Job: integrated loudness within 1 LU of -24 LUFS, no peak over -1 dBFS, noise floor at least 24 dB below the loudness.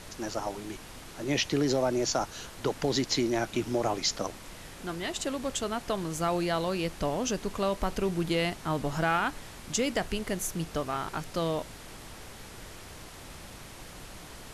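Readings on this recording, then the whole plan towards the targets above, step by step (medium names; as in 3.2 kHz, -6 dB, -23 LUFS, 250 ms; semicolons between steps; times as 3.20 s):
noise floor -46 dBFS; noise floor target -55 dBFS; loudness -30.5 LUFS; peak level -13.5 dBFS; loudness target -24.0 LUFS
-> noise print and reduce 9 dB; trim +6.5 dB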